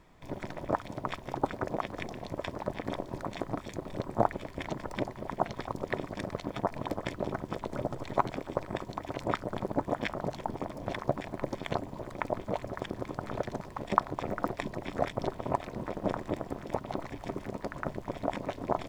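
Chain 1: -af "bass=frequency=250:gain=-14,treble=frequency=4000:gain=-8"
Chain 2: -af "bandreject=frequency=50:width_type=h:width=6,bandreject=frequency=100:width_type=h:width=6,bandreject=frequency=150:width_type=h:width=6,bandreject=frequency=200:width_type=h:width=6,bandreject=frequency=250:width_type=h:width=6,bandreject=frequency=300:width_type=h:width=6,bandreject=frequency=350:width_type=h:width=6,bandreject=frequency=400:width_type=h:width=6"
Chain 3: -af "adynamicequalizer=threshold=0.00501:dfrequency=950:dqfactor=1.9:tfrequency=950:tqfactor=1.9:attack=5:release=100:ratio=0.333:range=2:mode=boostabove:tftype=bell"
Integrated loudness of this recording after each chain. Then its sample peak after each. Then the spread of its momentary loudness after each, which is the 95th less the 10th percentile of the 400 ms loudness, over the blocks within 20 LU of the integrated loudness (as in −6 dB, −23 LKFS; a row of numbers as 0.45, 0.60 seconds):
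−37.5, −36.0, −34.5 LKFS; −5.0, −4.5, −2.5 dBFS; 8, 7, 8 LU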